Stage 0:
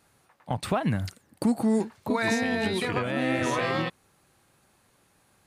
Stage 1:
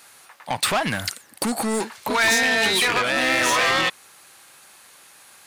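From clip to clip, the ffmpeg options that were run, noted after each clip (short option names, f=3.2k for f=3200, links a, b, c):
-filter_complex "[0:a]asplit=2[a][b];[b]highpass=f=720:p=1,volume=18dB,asoftclip=type=tanh:threshold=-15dB[c];[a][c]amix=inputs=2:normalize=0,lowpass=f=1.3k:p=1,volume=-6dB,crystalizer=i=6:c=0,tiltshelf=f=970:g=-3.5,volume=1dB"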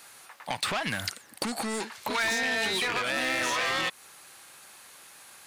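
-filter_complex "[0:a]acrossover=split=1500|6800[a][b][c];[a]acompressor=threshold=-31dB:ratio=4[d];[b]acompressor=threshold=-28dB:ratio=4[e];[c]acompressor=threshold=-42dB:ratio=4[f];[d][e][f]amix=inputs=3:normalize=0,volume=-1.5dB"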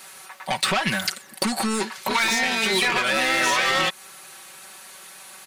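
-af "aecho=1:1:5.3:0.87,volume=5dB"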